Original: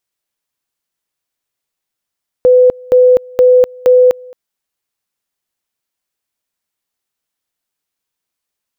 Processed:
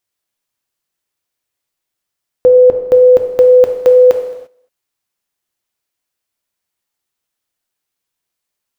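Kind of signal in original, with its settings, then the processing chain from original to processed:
two-level tone 502 Hz -3.5 dBFS, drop 26.5 dB, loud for 0.25 s, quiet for 0.22 s, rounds 4
gated-style reverb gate 370 ms falling, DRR 4.5 dB

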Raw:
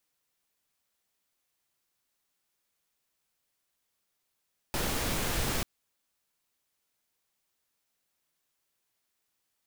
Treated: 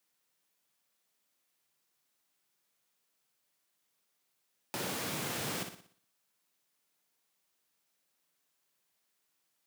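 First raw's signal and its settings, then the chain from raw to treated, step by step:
noise pink, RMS -30.5 dBFS 0.89 s
high-pass 120 Hz 24 dB/octave; compression 1.5:1, threshold -44 dBFS; on a send: flutter echo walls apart 10.2 m, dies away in 0.51 s

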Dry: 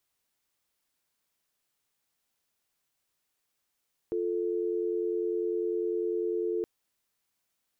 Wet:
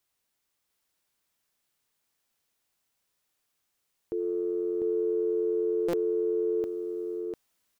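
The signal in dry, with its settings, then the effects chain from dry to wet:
call progress tone dial tone, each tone -30 dBFS 2.52 s
transient shaper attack 0 dB, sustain +7 dB; delay 698 ms -4 dB; buffer glitch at 5.88 s, samples 256, times 8

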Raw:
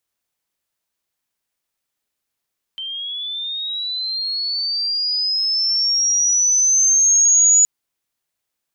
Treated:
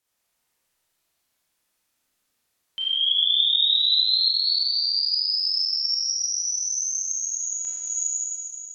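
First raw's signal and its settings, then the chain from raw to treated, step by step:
sweep linear 3.1 kHz -> 6.9 kHz -25.5 dBFS -> -9 dBFS 4.87 s
peak limiter -17 dBFS; Schroeder reverb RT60 2.4 s, combs from 25 ms, DRR -6 dB; low-pass that closes with the level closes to 2.9 kHz, closed at -12 dBFS

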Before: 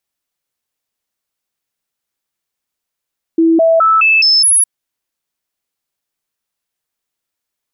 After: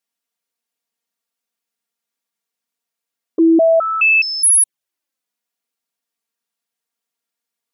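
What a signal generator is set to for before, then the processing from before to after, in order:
stepped sine 328 Hz up, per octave 1, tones 6, 0.21 s, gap 0.00 s -6.5 dBFS
high-pass 140 Hz; touch-sensitive flanger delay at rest 4.3 ms, full sweep at -9.5 dBFS

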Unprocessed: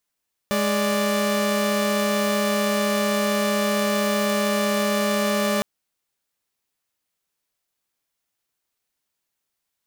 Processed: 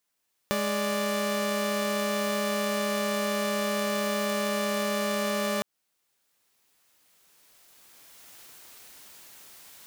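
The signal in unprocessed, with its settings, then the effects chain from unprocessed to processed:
chord G#3/D5 saw, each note -20 dBFS 5.11 s
recorder AGC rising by 11 dB/s; bass shelf 130 Hz -6.5 dB; compression, threshold -25 dBFS

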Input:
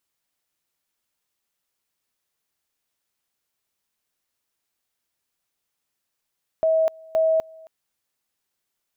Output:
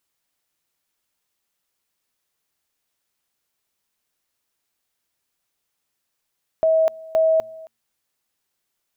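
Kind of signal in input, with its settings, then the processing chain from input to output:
two-level tone 643 Hz -16 dBFS, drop 25.5 dB, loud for 0.25 s, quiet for 0.27 s, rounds 2
de-hum 114.2 Hz, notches 2; in parallel at +1 dB: level held to a coarse grid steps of 15 dB

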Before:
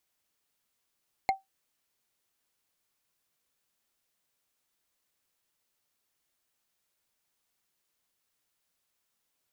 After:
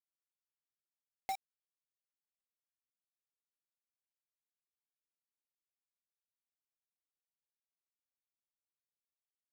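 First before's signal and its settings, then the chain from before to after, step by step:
wood hit, lowest mode 774 Hz, decay 0.16 s, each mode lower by 6 dB, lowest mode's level -18 dB
reverse; compression 12:1, threshold -36 dBFS; reverse; bit crusher 7-bit

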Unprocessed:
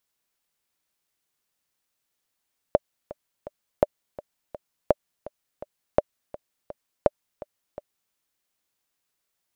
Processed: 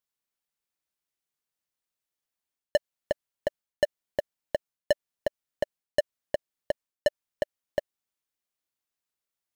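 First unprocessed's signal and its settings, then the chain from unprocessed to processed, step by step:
metronome 167 bpm, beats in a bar 3, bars 5, 592 Hz, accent 19 dB -3.5 dBFS
reverse; compression 6:1, threshold -26 dBFS; reverse; waveshaping leveller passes 5

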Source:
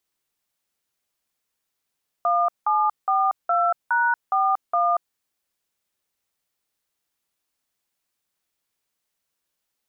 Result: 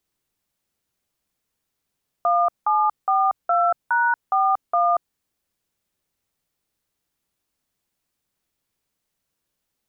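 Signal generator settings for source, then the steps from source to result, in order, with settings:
DTMF "1742#41", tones 234 ms, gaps 180 ms, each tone -20 dBFS
bass shelf 380 Hz +10 dB

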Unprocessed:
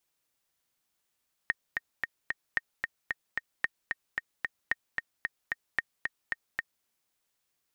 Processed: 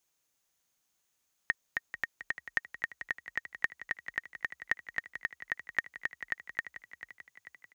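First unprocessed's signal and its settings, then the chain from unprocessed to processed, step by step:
metronome 224 bpm, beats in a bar 4, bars 5, 1.85 kHz, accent 4 dB -13 dBFS
peaking EQ 6.5 kHz +9 dB 0.21 oct; on a send: frequency-shifting echo 440 ms, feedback 58%, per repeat +30 Hz, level -12 dB

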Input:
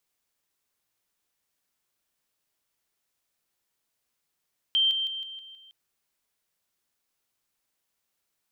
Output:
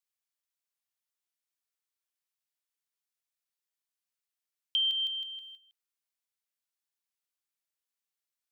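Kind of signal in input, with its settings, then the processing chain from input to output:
level ladder 3.14 kHz -19.5 dBFS, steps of -6 dB, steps 6, 0.16 s 0.00 s
gate -48 dBFS, range -11 dB; high-pass 1.4 kHz 6 dB/octave; compression, threshold -26 dBFS

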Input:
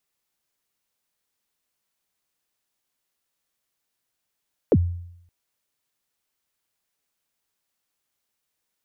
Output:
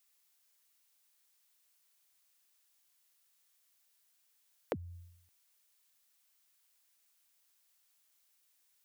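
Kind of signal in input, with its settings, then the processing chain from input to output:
kick drum length 0.57 s, from 570 Hz, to 87 Hz, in 50 ms, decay 0.75 s, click off, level -11 dB
bass shelf 460 Hz -8 dB; compression 10:1, threshold -32 dBFS; tilt EQ +2 dB/octave

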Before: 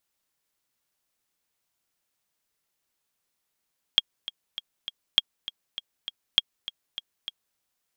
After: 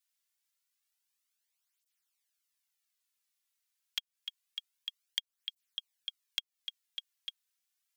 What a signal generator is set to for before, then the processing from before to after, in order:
metronome 200 bpm, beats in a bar 4, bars 3, 3.27 kHz, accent 15.5 dB -4.5 dBFS
Bessel high-pass 2 kHz, order 2; compression, threshold -31 dBFS; cancelling through-zero flanger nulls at 0.27 Hz, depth 3.7 ms

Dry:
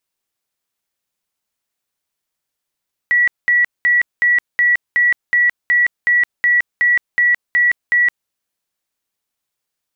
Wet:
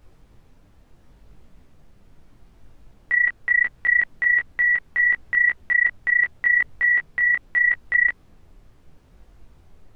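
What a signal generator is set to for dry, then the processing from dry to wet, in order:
tone bursts 1.94 kHz, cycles 322, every 0.37 s, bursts 14, -10 dBFS
low-pass 2.7 kHz; added noise brown -45 dBFS; detune thickener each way 26 cents

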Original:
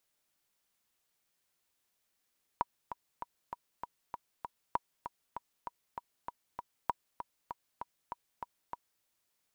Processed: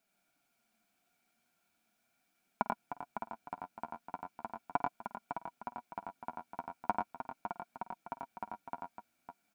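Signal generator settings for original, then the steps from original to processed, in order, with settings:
metronome 196 bpm, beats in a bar 7, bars 3, 962 Hz, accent 10 dB -16 dBFS
flange 0.39 Hz, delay 4.5 ms, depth 8.5 ms, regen +22%; small resonant body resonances 230/700/1400/2300 Hz, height 16 dB, ringing for 30 ms; on a send: multi-tap echo 50/89/111/556 ms -18/-4/-7/-8.5 dB

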